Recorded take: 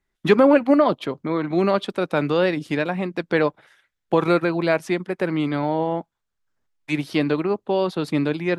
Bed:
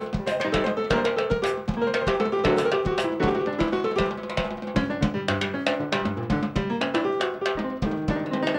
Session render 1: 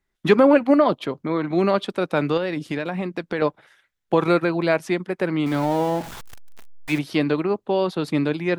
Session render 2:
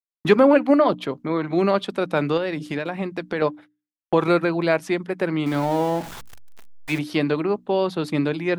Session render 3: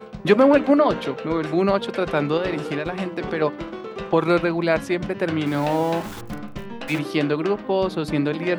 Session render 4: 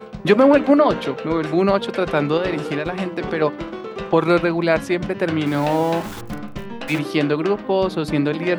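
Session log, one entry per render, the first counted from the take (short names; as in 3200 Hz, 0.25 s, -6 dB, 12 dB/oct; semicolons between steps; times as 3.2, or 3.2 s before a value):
2.37–3.42 compressor 4:1, threshold -21 dBFS; 5.46–6.99 zero-crossing step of -30 dBFS
gate -39 dBFS, range -40 dB; notches 60/120/180/240/300 Hz
add bed -8.5 dB
gain +2.5 dB; limiter -3 dBFS, peak gain reduction 1.5 dB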